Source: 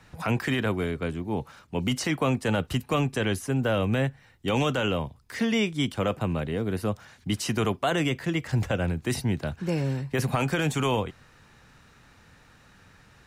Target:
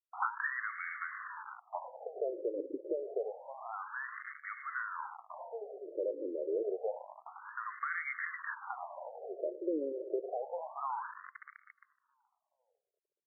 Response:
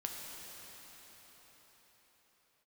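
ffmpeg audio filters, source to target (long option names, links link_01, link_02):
-filter_complex "[0:a]acrossover=split=160|3000[link_01][link_02][link_03];[link_02]acompressor=threshold=-36dB:ratio=5[link_04];[link_01][link_04][link_03]amix=inputs=3:normalize=0,asplit=2[link_05][link_06];[1:a]atrim=start_sample=2205,adelay=108[link_07];[link_06][link_07]afir=irnorm=-1:irlink=0,volume=-15.5dB[link_08];[link_05][link_08]amix=inputs=2:normalize=0,acrusher=bits=6:mix=0:aa=0.000001,asplit=2[link_09][link_10];[link_10]alimiter=level_in=4.5dB:limit=-24dB:level=0:latency=1:release=21,volume=-4.5dB,volume=2dB[link_11];[link_09][link_11]amix=inputs=2:normalize=0,asplit=2[link_12][link_13];[link_13]adelay=424,lowpass=frequency=1000:poles=1,volume=-19.5dB,asplit=2[link_14][link_15];[link_15]adelay=424,lowpass=frequency=1000:poles=1,volume=0.48,asplit=2[link_16][link_17];[link_17]adelay=424,lowpass=frequency=1000:poles=1,volume=0.48,asplit=2[link_18][link_19];[link_19]adelay=424,lowpass=frequency=1000:poles=1,volume=0.48[link_20];[link_12][link_14][link_16][link_18][link_20]amix=inputs=5:normalize=0,afftfilt=real='re*between(b*sr/1024,420*pow(1600/420,0.5+0.5*sin(2*PI*0.28*pts/sr))/1.41,420*pow(1600/420,0.5+0.5*sin(2*PI*0.28*pts/sr))*1.41)':imag='im*between(b*sr/1024,420*pow(1600/420,0.5+0.5*sin(2*PI*0.28*pts/sr))/1.41,420*pow(1600/420,0.5+0.5*sin(2*PI*0.28*pts/sr))*1.41)':win_size=1024:overlap=0.75,volume=1dB"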